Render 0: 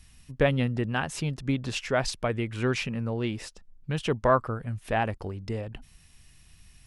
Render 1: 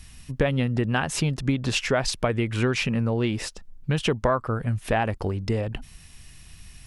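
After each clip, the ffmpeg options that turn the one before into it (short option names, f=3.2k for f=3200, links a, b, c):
-af "acompressor=threshold=-28dB:ratio=5,volume=8.5dB"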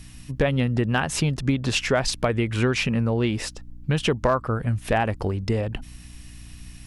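-af "aeval=exprs='val(0)+0.00562*(sin(2*PI*60*n/s)+sin(2*PI*2*60*n/s)/2+sin(2*PI*3*60*n/s)/3+sin(2*PI*4*60*n/s)/4+sin(2*PI*5*60*n/s)/5)':c=same,asoftclip=type=hard:threshold=-12.5dB,volume=1.5dB"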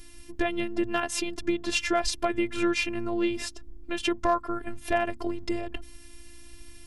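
-af "afftfilt=real='hypot(re,im)*cos(PI*b)':imag='0':win_size=512:overlap=0.75,bandreject=f=60:t=h:w=6,bandreject=f=120:t=h:w=6,bandreject=f=180:t=h:w=6,bandreject=f=240:t=h:w=6"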